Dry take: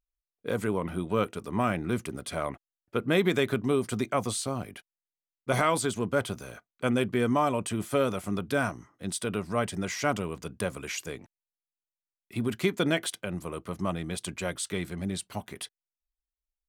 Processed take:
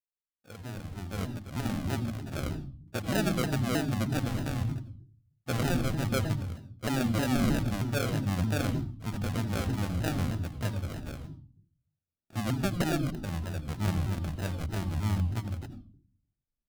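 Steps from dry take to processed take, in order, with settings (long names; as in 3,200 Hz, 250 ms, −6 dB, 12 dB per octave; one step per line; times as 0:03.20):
fade in at the beginning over 2.37 s
parametric band 97 Hz +14 dB 0.54 octaves
sample-rate reduction 1,000 Hz, jitter 0%
parametric band 430 Hz −8 dB 0.43 octaves
mains-hum notches 60/120 Hz
on a send at −12 dB: convolution reverb RT60 0.45 s, pre-delay 76 ms
on the sum: pitch modulation by a square or saw wave saw down 3.2 Hz, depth 250 cents
level −4 dB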